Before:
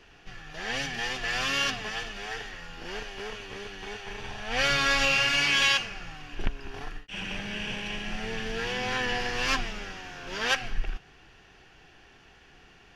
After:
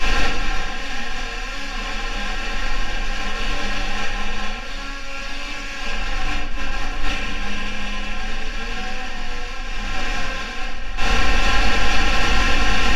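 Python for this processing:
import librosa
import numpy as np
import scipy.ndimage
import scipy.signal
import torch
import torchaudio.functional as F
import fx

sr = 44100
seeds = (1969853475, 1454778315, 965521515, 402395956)

y = fx.bin_compress(x, sr, power=0.4)
y = y + 0.76 * np.pad(y, (int(3.8 * sr / 1000.0), 0))[:len(y)]
y = fx.over_compress(y, sr, threshold_db=-31.0, ratio=-1.0)
y = fx.room_shoebox(y, sr, seeds[0], volume_m3=160.0, walls='mixed', distance_m=3.5)
y = y * 10.0 ** (-6.5 / 20.0)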